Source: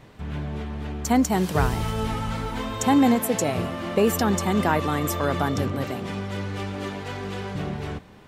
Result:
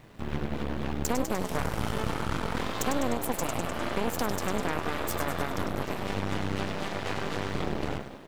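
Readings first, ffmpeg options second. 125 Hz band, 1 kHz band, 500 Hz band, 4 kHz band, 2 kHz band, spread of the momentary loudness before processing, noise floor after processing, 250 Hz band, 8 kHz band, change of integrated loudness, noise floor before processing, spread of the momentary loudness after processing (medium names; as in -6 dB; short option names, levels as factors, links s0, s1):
-7.0 dB, -6.0 dB, -6.0 dB, -3.0 dB, -3.0 dB, 11 LU, -39 dBFS, -9.0 dB, -5.5 dB, -7.0 dB, -47 dBFS, 4 LU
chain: -filter_complex "[0:a]acompressor=threshold=0.0316:ratio=6,asplit=9[s0][s1][s2][s3][s4][s5][s6][s7][s8];[s1]adelay=101,afreqshift=62,volume=0.473[s9];[s2]adelay=202,afreqshift=124,volume=0.288[s10];[s3]adelay=303,afreqshift=186,volume=0.176[s11];[s4]adelay=404,afreqshift=248,volume=0.107[s12];[s5]adelay=505,afreqshift=310,volume=0.0653[s13];[s6]adelay=606,afreqshift=372,volume=0.0398[s14];[s7]adelay=707,afreqshift=434,volume=0.0243[s15];[s8]adelay=808,afreqshift=496,volume=0.0148[s16];[s0][s9][s10][s11][s12][s13][s14][s15][s16]amix=inputs=9:normalize=0,acrusher=bits=10:mix=0:aa=0.000001,aeval=exprs='0.158*(cos(1*acos(clip(val(0)/0.158,-1,1)))-cos(1*PI/2))+0.0501*(cos(6*acos(clip(val(0)/0.158,-1,1)))-cos(6*PI/2))+0.00708*(cos(7*acos(clip(val(0)/0.158,-1,1)))-cos(7*PI/2))':c=same,volume=0.891"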